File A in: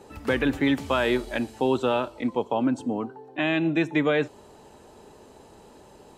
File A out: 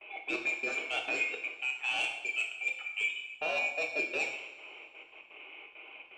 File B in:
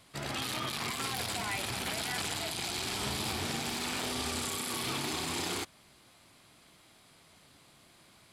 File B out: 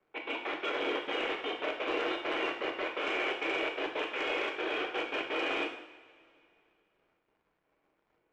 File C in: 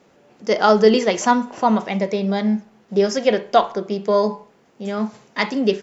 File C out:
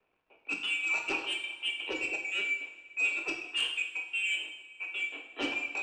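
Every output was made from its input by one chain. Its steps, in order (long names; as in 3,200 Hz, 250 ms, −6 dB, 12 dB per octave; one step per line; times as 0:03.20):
neighbouring bands swapped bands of 2,000 Hz
noise gate with hold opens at −43 dBFS
single-sideband voice off tune +130 Hz 180–3,100 Hz
tilt shelving filter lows +8 dB, about 780 Hz
reversed playback
downward compressor 12 to 1, threshold −38 dBFS
reversed playback
gate pattern "xx.x.x.xxxx.x" 167 BPM −60 dB
sine wavefolder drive 5 dB, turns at −27.5 dBFS
surface crackle 200 per second −55 dBFS
low-pass that shuts in the quiet parts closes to 1,500 Hz, open at −30.5 dBFS
coupled-rooms reverb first 0.73 s, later 2.6 s, from −18 dB, DRR 1.5 dB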